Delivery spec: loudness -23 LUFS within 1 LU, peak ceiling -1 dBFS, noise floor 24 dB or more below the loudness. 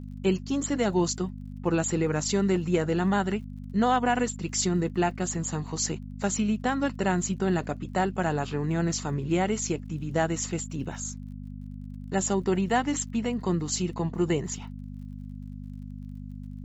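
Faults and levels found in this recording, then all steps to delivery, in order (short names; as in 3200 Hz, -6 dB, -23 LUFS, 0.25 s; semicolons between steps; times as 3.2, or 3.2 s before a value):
ticks 46/s; hum 50 Hz; harmonics up to 250 Hz; hum level -37 dBFS; loudness -28.0 LUFS; peak -12.0 dBFS; loudness target -23.0 LUFS
-> de-click; de-hum 50 Hz, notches 5; gain +5 dB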